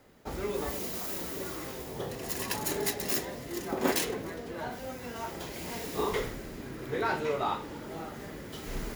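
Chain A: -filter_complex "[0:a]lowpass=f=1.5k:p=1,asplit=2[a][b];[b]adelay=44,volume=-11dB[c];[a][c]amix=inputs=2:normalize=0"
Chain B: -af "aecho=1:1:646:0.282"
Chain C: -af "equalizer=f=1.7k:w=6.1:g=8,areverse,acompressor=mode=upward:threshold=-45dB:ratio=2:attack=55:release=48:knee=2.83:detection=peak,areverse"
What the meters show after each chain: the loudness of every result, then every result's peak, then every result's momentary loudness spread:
-36.5, -34.0, -33.5 LUFS; -15.0, -13.0, -12.5 dBFS; 11, 10, 11 LU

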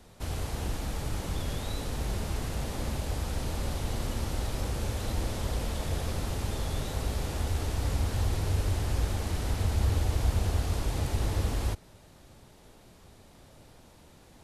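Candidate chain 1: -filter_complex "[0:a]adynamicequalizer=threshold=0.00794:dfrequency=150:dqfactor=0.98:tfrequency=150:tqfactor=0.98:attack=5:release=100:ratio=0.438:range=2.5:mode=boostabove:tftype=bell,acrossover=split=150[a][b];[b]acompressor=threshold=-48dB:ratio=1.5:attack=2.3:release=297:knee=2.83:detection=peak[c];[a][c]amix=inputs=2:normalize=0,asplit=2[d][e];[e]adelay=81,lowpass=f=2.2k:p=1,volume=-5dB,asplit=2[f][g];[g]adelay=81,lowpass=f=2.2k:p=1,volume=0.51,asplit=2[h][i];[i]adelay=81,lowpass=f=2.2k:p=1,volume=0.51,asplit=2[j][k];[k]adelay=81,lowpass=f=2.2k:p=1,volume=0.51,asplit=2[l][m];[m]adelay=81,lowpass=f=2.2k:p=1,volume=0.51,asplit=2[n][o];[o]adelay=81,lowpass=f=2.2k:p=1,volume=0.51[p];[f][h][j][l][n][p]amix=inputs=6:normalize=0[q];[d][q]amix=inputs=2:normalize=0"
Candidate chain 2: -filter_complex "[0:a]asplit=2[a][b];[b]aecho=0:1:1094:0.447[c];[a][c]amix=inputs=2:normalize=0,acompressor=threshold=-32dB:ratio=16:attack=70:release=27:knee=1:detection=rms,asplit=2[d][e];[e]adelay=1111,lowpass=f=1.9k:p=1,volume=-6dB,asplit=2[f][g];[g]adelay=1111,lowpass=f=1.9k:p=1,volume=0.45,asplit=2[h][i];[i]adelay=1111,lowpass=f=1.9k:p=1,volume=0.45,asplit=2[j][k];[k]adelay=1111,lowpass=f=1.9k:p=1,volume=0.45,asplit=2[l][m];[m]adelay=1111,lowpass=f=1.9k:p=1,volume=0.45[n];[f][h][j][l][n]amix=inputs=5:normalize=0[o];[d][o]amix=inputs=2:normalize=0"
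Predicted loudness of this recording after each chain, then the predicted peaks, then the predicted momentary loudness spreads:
-30.5, -33.0 LUFS; -12.5, -17.5 dBFS; 8, 6 LU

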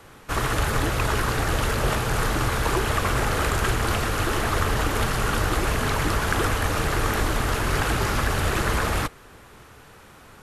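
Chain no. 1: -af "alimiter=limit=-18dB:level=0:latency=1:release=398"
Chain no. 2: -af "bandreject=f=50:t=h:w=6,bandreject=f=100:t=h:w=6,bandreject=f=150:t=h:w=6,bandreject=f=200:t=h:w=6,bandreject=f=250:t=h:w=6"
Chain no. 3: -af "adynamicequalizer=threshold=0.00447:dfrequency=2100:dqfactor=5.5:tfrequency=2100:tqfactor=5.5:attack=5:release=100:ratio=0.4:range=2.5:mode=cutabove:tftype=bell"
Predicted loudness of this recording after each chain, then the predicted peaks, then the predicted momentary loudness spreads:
-29.5, -24.5, -24.5 LUFS; -18.0, -6.5, -8.0 dBFS; 8, 1, 1 LU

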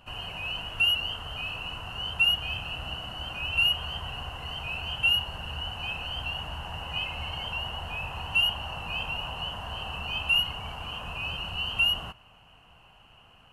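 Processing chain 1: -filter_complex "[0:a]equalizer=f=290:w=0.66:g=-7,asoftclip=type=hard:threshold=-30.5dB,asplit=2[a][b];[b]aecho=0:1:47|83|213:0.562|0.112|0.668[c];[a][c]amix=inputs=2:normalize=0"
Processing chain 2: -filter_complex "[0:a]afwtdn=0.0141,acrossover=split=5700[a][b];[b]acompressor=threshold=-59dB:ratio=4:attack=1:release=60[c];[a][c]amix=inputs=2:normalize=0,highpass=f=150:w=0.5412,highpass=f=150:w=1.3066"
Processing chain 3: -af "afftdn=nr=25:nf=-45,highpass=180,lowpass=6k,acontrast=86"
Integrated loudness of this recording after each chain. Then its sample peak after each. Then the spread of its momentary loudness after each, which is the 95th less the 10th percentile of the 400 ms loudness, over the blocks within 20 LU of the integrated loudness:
-31.0, -29.0, -22.0 LUFS; -23.0, -15.0, -8.5 dBFS; 6, 16, 12 LU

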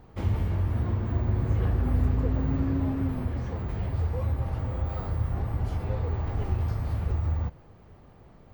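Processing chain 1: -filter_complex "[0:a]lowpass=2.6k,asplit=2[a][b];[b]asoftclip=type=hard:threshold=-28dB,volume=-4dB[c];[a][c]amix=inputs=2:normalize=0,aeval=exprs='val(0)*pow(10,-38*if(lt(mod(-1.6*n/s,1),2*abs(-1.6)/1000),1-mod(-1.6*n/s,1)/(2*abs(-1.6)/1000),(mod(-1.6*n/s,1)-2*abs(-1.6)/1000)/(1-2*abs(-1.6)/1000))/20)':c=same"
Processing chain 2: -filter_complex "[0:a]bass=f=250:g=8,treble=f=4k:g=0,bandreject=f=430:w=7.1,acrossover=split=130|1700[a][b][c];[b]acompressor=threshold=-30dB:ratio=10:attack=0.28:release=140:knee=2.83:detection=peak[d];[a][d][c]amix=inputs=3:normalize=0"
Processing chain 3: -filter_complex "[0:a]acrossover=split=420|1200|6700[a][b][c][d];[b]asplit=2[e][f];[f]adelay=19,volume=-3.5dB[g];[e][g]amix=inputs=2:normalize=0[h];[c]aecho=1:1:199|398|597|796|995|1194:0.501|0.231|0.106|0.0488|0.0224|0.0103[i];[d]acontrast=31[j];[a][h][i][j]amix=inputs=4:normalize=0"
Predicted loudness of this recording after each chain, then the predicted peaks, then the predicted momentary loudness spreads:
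-35.5, -22.5, -29.0 LUFS; -14.5, -8.0, -14.0 dBFS; 12, 5, 5 LU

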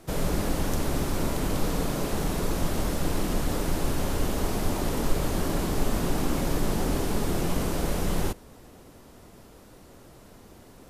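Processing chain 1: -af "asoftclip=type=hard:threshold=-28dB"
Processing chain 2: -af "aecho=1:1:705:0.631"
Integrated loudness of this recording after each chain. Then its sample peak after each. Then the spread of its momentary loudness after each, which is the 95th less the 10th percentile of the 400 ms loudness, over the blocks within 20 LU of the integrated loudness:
-33.5, -28.0 LUFS; -28.0, -10.0 dBFS; 18, 3 LU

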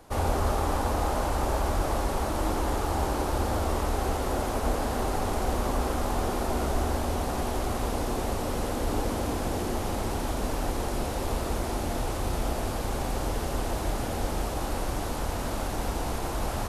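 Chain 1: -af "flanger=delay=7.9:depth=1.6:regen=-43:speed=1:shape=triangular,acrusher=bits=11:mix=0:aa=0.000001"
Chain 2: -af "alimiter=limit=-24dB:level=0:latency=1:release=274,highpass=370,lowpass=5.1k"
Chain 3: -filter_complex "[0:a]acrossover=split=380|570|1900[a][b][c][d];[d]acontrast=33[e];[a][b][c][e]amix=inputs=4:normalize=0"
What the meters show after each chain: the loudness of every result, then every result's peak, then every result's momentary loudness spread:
-34.0, -38.5, -29.0 LUFS; -18.0, -23.5, -13.5 dBFS; 4, 2, 3 LU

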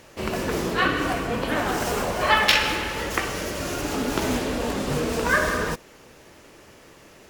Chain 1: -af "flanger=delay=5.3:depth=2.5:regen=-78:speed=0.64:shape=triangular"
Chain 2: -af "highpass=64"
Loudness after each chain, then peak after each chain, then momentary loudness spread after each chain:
-28.0, -24.0 LUFS; -8.5, -3.5 dBFS; 9, 9 LU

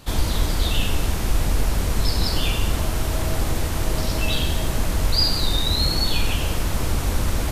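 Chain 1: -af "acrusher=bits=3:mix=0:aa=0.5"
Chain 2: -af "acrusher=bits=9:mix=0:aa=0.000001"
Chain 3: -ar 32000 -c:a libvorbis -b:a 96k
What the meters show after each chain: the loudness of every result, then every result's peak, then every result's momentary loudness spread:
-22.5, -23.0, -23.5 LUFS; -7.5, -7.0, -7.0 dBFS; 4, 5, 5 LU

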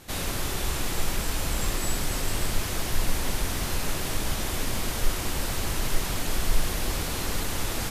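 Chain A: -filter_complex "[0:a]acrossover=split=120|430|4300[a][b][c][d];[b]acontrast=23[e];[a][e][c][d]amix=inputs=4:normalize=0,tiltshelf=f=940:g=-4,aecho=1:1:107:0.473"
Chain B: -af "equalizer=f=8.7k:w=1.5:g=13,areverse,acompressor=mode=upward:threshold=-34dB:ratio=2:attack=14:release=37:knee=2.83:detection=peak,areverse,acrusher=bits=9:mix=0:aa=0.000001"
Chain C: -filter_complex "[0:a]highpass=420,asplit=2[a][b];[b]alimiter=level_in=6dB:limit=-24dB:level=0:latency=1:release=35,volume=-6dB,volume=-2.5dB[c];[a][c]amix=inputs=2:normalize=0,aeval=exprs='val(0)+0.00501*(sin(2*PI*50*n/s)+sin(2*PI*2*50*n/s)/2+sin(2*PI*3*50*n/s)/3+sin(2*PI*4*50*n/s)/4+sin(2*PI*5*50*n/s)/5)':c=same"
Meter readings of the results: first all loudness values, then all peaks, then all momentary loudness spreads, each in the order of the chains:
-26.5, -24.5, -28.0 LUFS; -11.5, -8.5, -18.0 dBFS; 1, 2, 1 LU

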